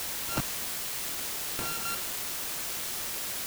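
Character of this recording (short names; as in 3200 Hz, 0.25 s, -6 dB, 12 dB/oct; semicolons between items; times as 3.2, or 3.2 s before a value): a buzz of ramps at a fixed pitch in blocks of 32 samples; chopped level 2.7 Hz, depth 65%, duty 30%; a quantiser's noise floor 6-bit, dither triangular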